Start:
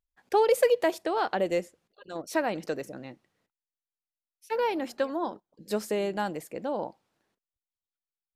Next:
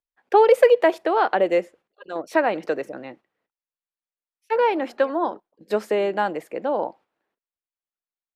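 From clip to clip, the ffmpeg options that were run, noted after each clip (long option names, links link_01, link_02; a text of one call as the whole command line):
ffmpeg -i in.wav -filter_complex "[0:a]acrossover=split=280 3100:gain=0.224 1 0.178[link_01][link_02][link_03];[link_01][link_02][link_03]amix=inputs=3:normalize=0,agate=range=-9dB:threshold=-55dB:ratio=16:detection=peak,volume=8.5dB" out.wav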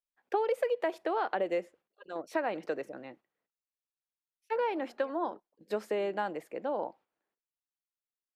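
ffmpeg -i in.wav -af "acompressor=threshold=-17dB:ratio=6,volume=-9dB" out.wav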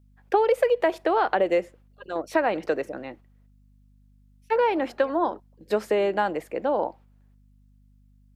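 ffmpeg -i in.wav -af "aeval=exprs='val(0)+0.000562*(sin(2*PI*50*n/s)+sin(2*PI*2*50*n/s)/2+sin(2*PI*3*50*n/s)/3+sin(2*PI*4*50*n/s)/4+sin(2*PI*5*50*n/s)/5)':channel_layout=same,volume=9dB" out.wav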